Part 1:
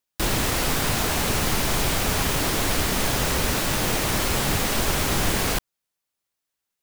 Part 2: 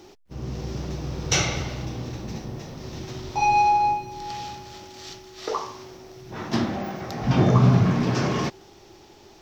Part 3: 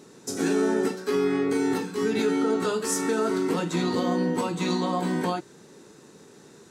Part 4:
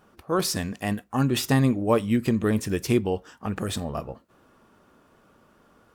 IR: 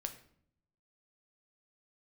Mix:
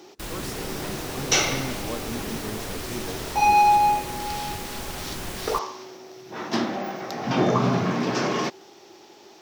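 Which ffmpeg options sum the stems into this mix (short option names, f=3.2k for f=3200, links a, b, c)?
-filter_complex "[0:a]volume=-11.5dB[a];[1:a]highpass=260,volume=2dB[b];[2:a]volume=-20dB[c];[3:a]volume=-13.5dB[d];[a][b][c][d]amix=inputs=4:normalize=0"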